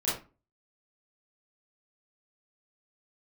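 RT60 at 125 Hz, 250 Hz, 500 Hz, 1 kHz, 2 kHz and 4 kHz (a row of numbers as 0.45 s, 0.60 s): 0.40 s, 0.40 s, 0.35 s, 0.30 s, 0.30 s, 0.20 s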